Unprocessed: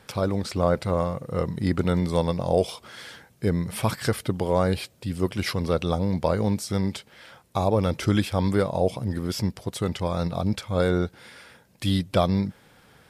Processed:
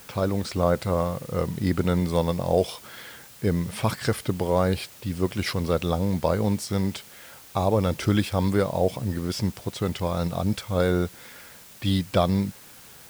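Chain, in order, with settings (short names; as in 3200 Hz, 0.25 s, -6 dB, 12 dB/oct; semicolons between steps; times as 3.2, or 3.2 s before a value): low-pass opened by the level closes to 2500 Hz, open at -22 dBFS; requantised 8-bit, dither triangular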